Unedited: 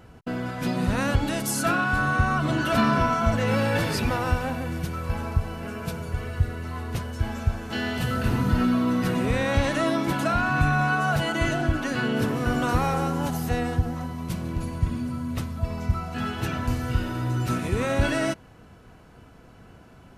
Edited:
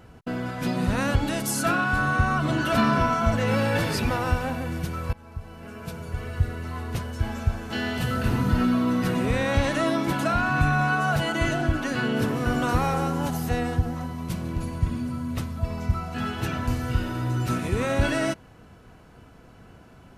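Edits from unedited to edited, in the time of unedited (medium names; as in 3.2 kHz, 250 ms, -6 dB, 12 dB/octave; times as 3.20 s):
5.13–6.45 s: fade in, from -21.5 dB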